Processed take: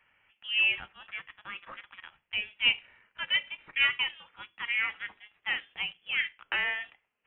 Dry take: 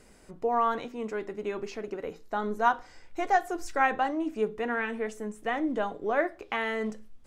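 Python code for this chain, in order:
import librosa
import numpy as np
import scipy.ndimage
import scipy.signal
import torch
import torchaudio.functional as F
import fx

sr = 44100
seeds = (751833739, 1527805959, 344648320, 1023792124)

y = scipy.signal.sosfilt(scipy.signal.butter(4, 1000.0, 'highpass', fs=sr, output='sos'), x)
y = fx.leveller(y, sr, passes=1)
y = fx.freq_invert(y, sr, carrier_hz=3800)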